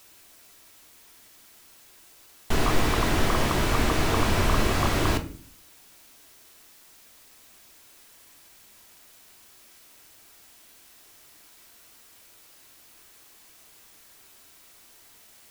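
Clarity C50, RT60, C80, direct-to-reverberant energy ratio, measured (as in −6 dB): 14.0 dB, 0.45 s, 18.0 dB, 6.0 dB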